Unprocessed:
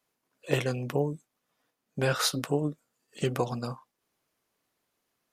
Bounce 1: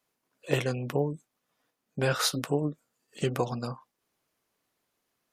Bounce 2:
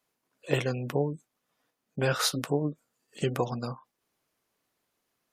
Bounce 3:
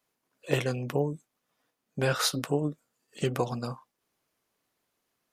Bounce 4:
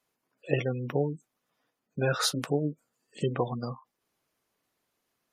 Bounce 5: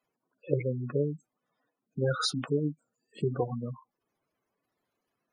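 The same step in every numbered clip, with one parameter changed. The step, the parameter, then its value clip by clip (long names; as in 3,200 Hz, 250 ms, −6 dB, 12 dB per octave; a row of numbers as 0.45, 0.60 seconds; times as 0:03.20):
gate on every frequency bin, under each frame's peak: −45, −35, −60, −20, −10 decibels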